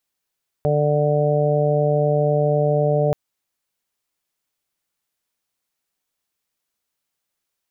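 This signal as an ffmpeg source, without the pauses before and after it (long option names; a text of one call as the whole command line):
ffmpeg -f lavfi -i "aevalsrc='0.106*sin(2*PI*148*t)+0.0237*sin(2*PI*296*t)+0.0841*sin(2*PI*444*t)+0.106*sin(2*PI*592*t)+0.0422*sin(2*PI*740*t)':duration=2.48:sample_rate=44100" out.wav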